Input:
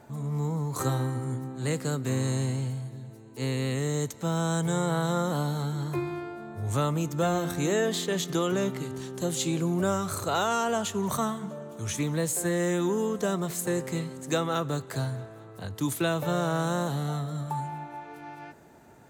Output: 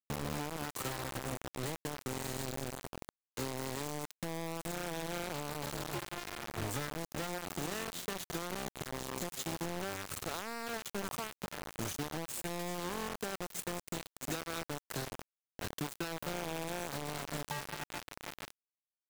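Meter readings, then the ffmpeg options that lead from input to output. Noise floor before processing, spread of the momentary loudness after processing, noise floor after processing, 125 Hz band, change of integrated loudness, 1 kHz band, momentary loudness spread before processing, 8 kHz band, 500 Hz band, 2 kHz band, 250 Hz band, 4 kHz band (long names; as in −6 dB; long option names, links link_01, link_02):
−47 dBFS, 5 LU, below −85 dBFS, −15.0 dB, −10.5 dB, −9.5 dB, 10 LU, −7.5 dB, −12.0 dB, −5.5 dB, −13.0 dB, −6.0 dB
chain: -af "acompressor=threshold=-37dB:ratio=12,acrusher=bits=5:mix=0:aa=0.000001"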